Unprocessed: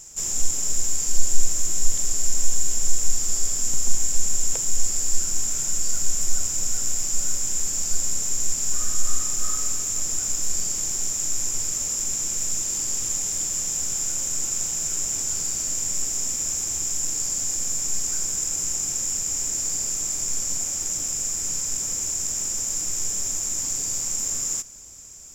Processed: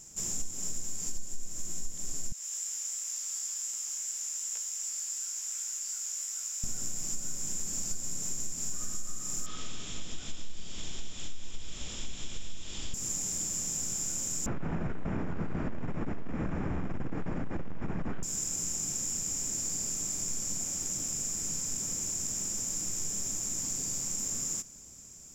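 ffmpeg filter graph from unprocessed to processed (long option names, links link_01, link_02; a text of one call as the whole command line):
ffmpeg -i in.wav -filter_complex "[0:a]asettb=1/sr,asplit=3[link_01][link_02][link_03];[link_01]atrim=end=2.324[link_04];[link_02]atrim=start=2.32:end=6.64,asetpts=PTS-STARTPTS,afade=type=in:duration=0.004:curve=qsin,afade=type=out:start_time=4.316:duration=0.004:curve=qsin,highpass=1400,flanger=delay=16.5:depth=2.7:speed=2.7[link_05];[link_03]atrim=start=6.636[link_06];[link_04][link_05]acrossfade=duration=0.004:curve1=hsin:curve2=qsin[link_07];[link_07][link_06]acrossfade=duration=0.004:curve1=qsin:curve2=hsin,asettb=1/sr,asplit=3[link_08][link_09][link_10];[link_08]atrim=end=9.464[link_11];[link_09]atrim=start=9.46:end=12.94,asetpts=PTS-STARTPTS,afade=type=in:duration=0.004:curve=qsin,afade=type=out:start_time=3.476:duration=0.004:curve=qsin,asubboost=boost=6:cutoff=68,lowpass=frequency=3400:width_type=q:width=5.8[link_12];[link_10]atrim=start=12.936[link_13];[link_11][link_12]acrossfade=duration=0.004:curve1=hsin:curve2=qsin[link_14];[link_14][link_13]acrossfade=duration=0.004:curve1=qsin:curve2=hsin,asettb=1/sr,asplit=3[link_15][link_16][link_17];[link_15]atrim=end=14.464[link_18];[link_16]atrim=start=14.46:end=18.23,asetpts=PTS-STARTPTS,afade=type=in:duration=0.004:curve=qsin,afade=type=out:start_time=3.766:duration=0.004:curve=qsin,lowpass=frequency=1800:width=0.5412,lowpass=frequency=1800:width=1.3066,aeval=exprs='0.168*sin(PI/2*5.01*val(0)/0.168)':channel_layout=same[link_19];[link_17]atrim=start=18.226[link_20];[link_18][link_19]acrossfade=duration=0.004:curve1=hsin:curve2=qsin[link_21];[link_21][link_20]acrossfade=duration=0.004:curve1=qsin:curve2=hsin,equalizer=frequency=190:width=0.82:gain=9.5,acompressor=threshold=-21dB:ratio=6,volume=-7dB" out.wav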